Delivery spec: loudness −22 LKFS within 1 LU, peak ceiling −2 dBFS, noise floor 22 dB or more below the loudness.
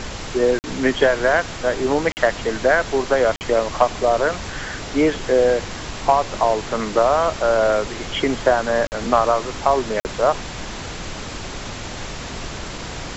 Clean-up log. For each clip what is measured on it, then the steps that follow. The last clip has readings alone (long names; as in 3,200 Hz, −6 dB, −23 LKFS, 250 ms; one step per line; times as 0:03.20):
number of dropouts 5; longest dropout 49 ms; background noise floor −32 dBFS; target noise floor −42 dBFS; integrated loudness −19.5 LKFS; sample peak −3.0 dBFS; target loudness −22.0 LKFS
→ repair the gap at 0:00.59/0:02.12/0:03.36/0:08.87/0:10.00, 49 ms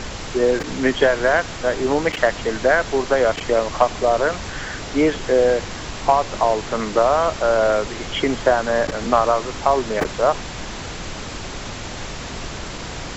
number of dropouts 0; background noise floor −32 dBFS; target noise floor −42 dBFS
→ noise reduction from a noise print 10 dB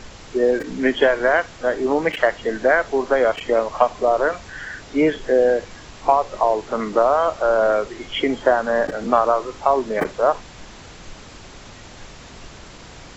background noise floor −41 dBFS; target noise floor −42 dBFS
→ noise reduction from a noise print 6 dB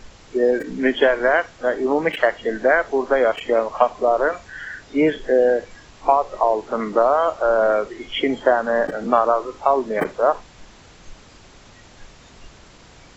background noise floor −47 dBFS; integrated loudness −20.0 LKFS; sample peak −3.0 dBFS; target loudness −22.0 LKFS
→ level −2 dB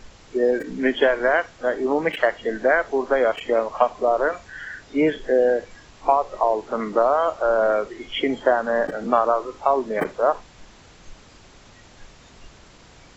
integrated loudness −22.0 LKFS; sample peak −5.0 dBFS; background noise floor −49 dBFS